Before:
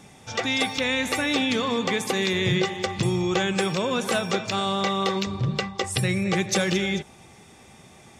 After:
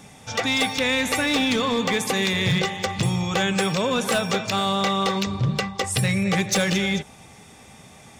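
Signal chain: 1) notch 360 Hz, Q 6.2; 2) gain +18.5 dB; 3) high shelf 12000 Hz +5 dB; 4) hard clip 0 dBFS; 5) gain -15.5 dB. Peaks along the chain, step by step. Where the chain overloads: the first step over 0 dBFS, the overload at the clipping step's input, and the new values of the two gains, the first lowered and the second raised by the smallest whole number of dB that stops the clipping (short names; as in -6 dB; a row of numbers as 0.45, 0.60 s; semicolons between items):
-11.0, +7.5, +8.0, 0.0, -15.5 dBFS; step 2, 8.0 dB; step 2 +10.5 dB, step 5 -7.5 dB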